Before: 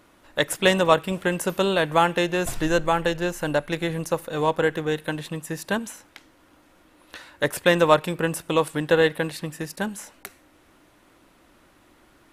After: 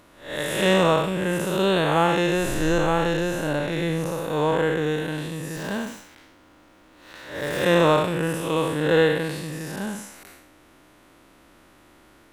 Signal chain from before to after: time blur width 0.193 s; 5.56–7.63 running maximum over 3 samples; gain +4.5 dB

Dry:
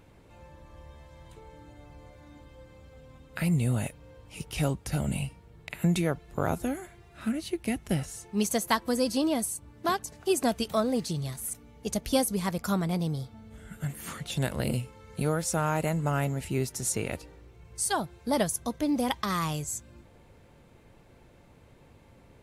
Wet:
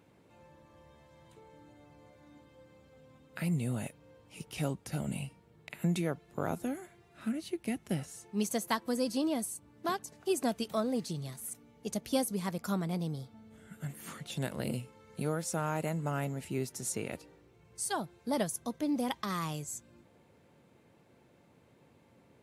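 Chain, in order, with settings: HPF 180 Hz 12 dB/oct; low shelf 230 Hz +7 dB; gain -6.5 dB

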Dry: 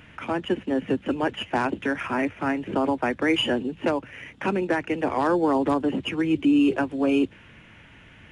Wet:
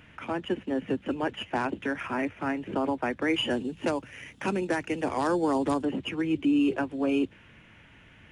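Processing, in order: 3.5–5.85 tone controls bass +2 dB, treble +11 dB; gain -4.5 dB

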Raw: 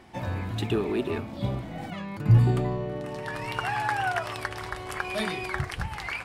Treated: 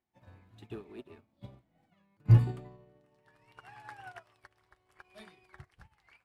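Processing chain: upward expander 2.5:1, over -37 dBFS; gain -1 dB

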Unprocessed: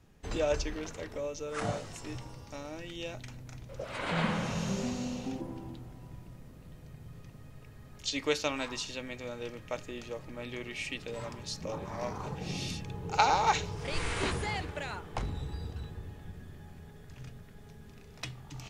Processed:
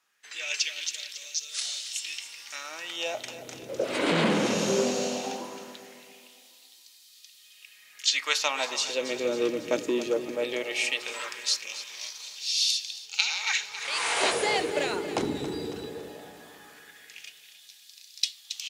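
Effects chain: LFO high-pass sine 0.18 Hz 310–4200 Hz; on a send: feedback echo 0.275 s, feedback 50%, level -13 dB; on the sum: AGC gain up to 13 dB; bell 1100 Hz -9 dB 2 oct; core saturation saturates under 1300 Hz

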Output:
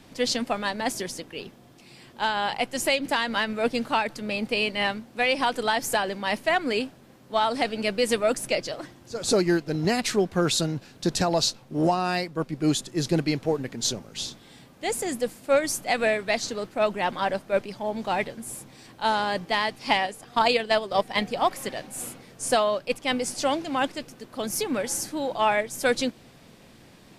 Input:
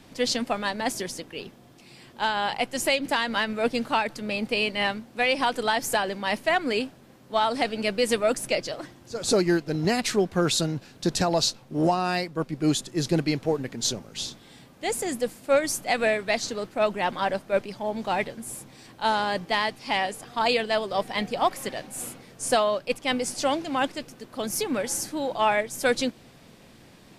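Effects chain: 19.74–21.26 transient shaper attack +6 dB, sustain -4 dB

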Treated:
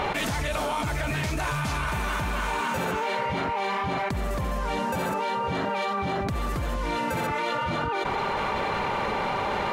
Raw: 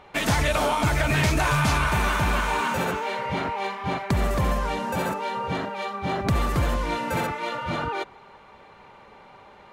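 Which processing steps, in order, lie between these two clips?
fast leveller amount 100%; gain -8.5 dB

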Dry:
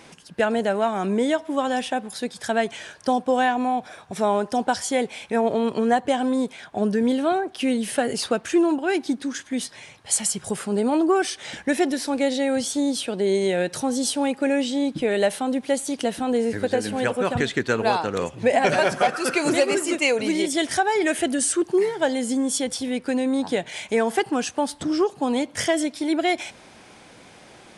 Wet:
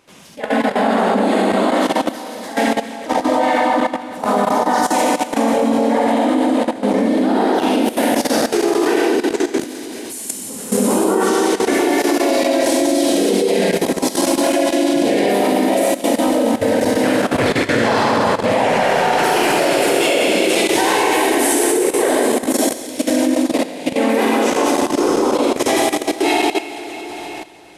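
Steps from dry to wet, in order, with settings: Schroeder reverb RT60 3.9 s, combs from 31 ms, DRR -8 dB; harmoniser +3 st -3 dB, +4 st -5 dB; level quantiser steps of 14 dB; gain -1 dB

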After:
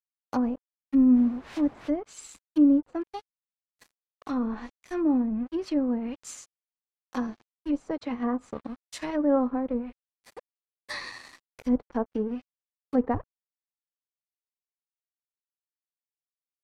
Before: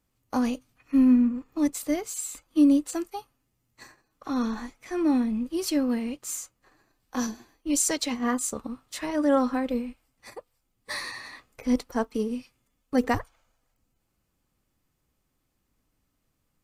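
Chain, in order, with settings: crossover distortion -44.5 dBFS; 1.15–1.87 added noise white -37 dBFS; treble ducked by the level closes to 910 Hz, closed at -23.5 dBFS

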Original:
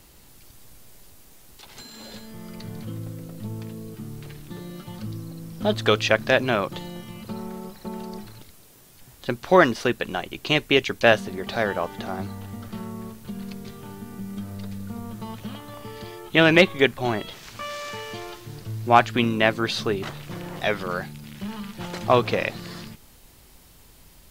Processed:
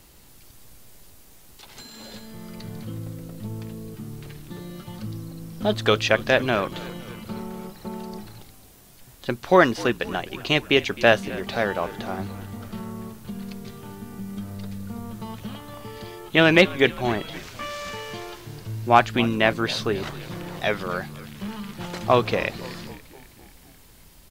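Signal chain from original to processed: frequency-shifting echo 0.259 s, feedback 63%, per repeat -57 Hz, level -19 dB

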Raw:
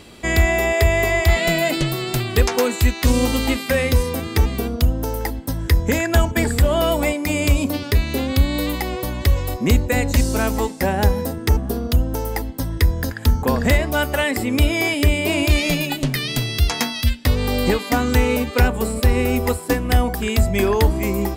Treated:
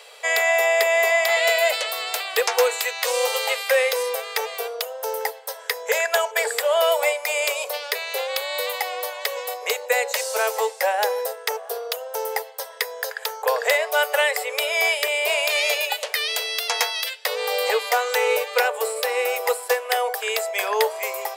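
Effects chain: Chebyshev high-pass 440 Hz, order 8; gain +1.5 dB

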